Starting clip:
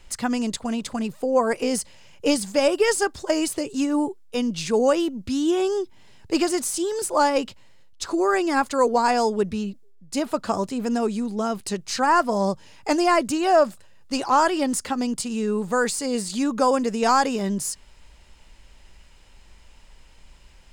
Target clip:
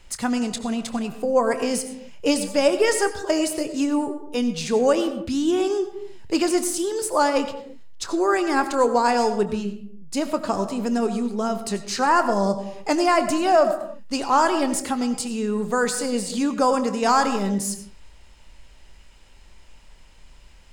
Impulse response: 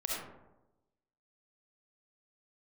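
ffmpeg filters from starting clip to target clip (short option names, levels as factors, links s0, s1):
-filter_complex "[0:a]asplit=2[s0][s1];[1:a]atrim=start_sample=2205,afade=t=out:st=0.38:d=0.01,atrim=end_sample=17199,adelay=25[s2];[s1][s2]afir=irnorm=-1:irlink=0,volume=0.237[s3];[s0][s3]amix=inputs=2:normalize=0"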